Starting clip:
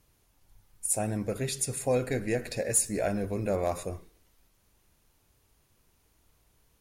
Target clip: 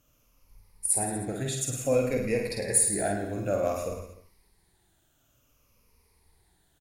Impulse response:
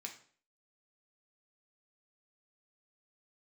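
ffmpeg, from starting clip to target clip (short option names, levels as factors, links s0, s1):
-af "afftfilt=real='re*pow(10,11/40*sin(2*PI*(0.87*log(max(b,1)*sr/1024/100)/log(2)-(-0.56)*(pts-256)/sr)))':imag='im*pow(10,11/40*sin(2*PI*(0.87*log(max(b,1)*sr/1024/100)/log(2)-(-0.56)*(pts-256)/sr)))':win_size=1024:overlap=0.75,aecho=1:1:50|105|165.5|232|305.3:0.631|0.398|0.251|0.158|0.1,volume=0.75"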